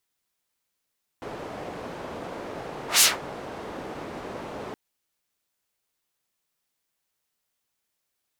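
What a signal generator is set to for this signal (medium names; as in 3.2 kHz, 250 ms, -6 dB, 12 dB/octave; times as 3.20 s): whoosh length 3.52 s, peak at 1.79 s, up 0.14 s, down 0.19 s, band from 530 Hz, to 7.7 kHz, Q 0.85, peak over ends 22 dB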